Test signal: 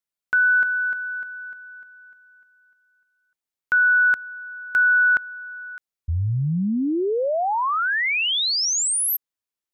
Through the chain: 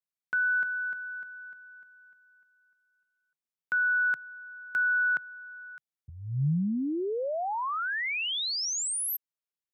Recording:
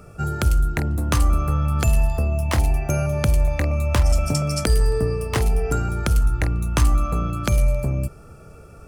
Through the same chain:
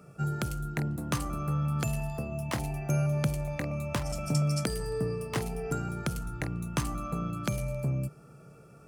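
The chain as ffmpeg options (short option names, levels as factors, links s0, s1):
-af "highpass=f=45:w=0.5412,highpass=f=45:w=1.3066,lowshelf=f=110:t=q:w=3:g=-8,volume=0.355"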